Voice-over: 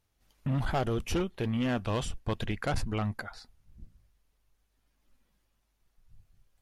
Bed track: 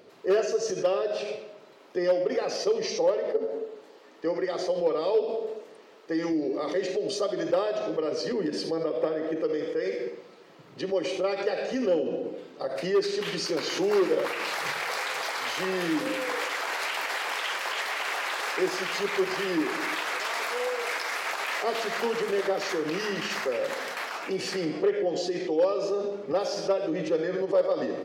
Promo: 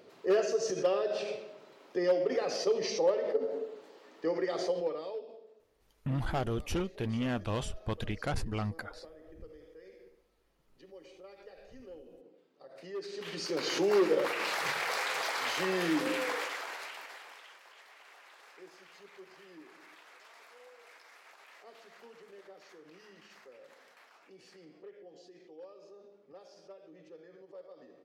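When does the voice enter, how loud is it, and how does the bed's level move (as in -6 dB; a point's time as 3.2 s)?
5.60 s, -3.0 dB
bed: 4.69 s -3.5 dB
5.48 s -24.5 dB
12.5 s -24.5 dB
13.69 s -2.5 dB
16.23 s -2.5 dB
17.63 s -26 dB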